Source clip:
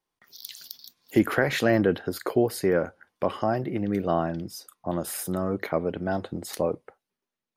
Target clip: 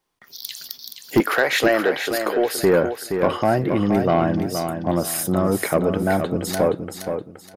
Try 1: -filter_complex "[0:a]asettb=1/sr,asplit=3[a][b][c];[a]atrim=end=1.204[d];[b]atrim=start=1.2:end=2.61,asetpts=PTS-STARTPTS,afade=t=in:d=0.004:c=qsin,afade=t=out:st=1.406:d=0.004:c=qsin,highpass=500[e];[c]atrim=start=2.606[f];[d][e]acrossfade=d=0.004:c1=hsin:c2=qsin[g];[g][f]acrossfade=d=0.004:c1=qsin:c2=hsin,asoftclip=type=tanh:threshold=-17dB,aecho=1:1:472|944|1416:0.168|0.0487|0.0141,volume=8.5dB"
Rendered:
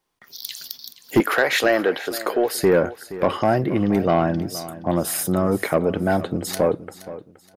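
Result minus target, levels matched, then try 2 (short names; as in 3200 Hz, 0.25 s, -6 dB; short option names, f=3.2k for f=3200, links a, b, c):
echo-to-direct -8.5 dB
-filter_complex "[0:a]asettb=1/sr,asplit=3[a][b][c];[a]atrim=end=1.204[d];[b]atrim=start=1.2:end=2.61,asetpts=PTS-STARTPTS,afade=t=in:d=0.004:c=qsin,afade=t=out:st=1.406:d=0.004:c=qsin,highpass=500[e];[c]atrim=start=2.606[f];[d][e]acrossfade=d=0.004:c1=hsin:c2=qsin[g];[g][f]acrossfade=d=0.004:c1=qsin:c2=hsin,asoftclip=type=tanh:threshold=-17dB,aecho=1:1:472|944|1416|1888:0.447|0.13|0.0376|0.0109,volume=8.5dB"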